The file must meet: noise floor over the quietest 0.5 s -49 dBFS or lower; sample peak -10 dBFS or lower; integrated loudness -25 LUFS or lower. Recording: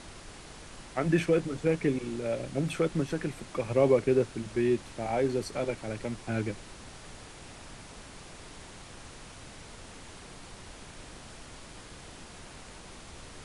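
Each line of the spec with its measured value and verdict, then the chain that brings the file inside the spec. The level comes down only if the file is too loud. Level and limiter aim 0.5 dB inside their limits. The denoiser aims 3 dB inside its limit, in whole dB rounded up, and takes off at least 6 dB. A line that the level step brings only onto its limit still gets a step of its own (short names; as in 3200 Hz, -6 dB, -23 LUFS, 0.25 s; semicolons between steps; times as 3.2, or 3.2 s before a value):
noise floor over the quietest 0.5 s -47 dBFS: fail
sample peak -11.0 dBFS: OK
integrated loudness -30.0 LUFS: OK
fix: denoiser 6 dB, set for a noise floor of -47 dBFS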